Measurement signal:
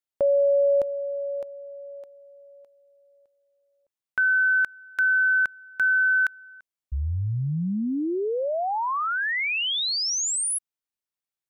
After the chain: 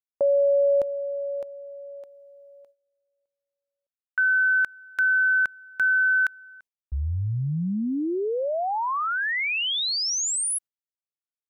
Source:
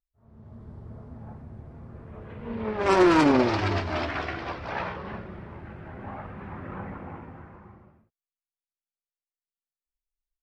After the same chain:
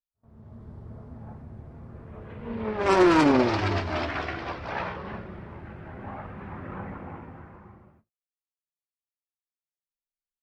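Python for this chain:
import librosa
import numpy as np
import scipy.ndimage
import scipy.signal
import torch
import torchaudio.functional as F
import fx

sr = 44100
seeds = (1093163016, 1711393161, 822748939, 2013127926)

y = fx.gate_hold(x, sr, open_db=-50.0, close_db=-52.0, hold_ms=46.0, range_db=-18, attack_ms=0.95, release_ms=60.0)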